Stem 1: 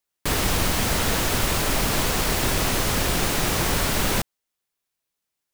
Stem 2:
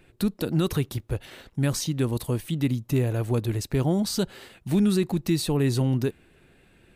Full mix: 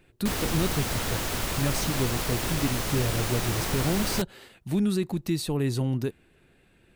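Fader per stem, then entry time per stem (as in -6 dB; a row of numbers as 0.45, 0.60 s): -7.0, -3.5 dB; 0.00, 0.00 s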